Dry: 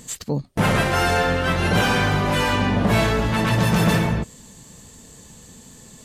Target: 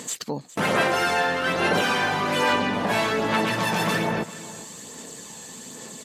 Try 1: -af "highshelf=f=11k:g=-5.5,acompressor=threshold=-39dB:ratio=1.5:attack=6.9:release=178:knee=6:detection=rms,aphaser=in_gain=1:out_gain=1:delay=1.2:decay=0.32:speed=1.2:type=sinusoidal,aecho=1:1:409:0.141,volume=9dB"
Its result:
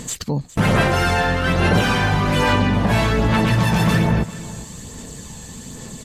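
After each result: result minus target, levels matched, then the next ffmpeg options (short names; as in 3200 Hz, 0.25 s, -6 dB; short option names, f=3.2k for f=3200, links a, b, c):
250 Hz band +3.5 dB; compressor: peak gain reduction -2 dB
-af "highpass=300,highshelf=f=11k:g=-5.5,acompressor=threshold=-39dB:ratio=1.5:attack=6.9:release=178:knee=6:detection=rms,aphaser=in_gain=1:out_gain=1:delay=1.2:decay=0.32:speed=1.2:type=sinusoidal,aecho=1:1:409:0.141,volume=9dB"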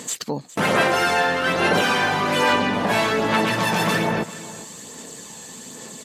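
compressor: peak gain reduction -3 dB
-af "highpass=300,highshelf=f=11k:g=-5.5,acompressor=threshold=-48dB:ratio=1.5:attack=6.9:release=178:knee=6:detection=rms,aphaser=in_gain=1:out_gain=1:delay=1.2:decay=0.32:speed=1.2:type=sinusoidal,aecho=1:1:409:0.141,volume=9dB"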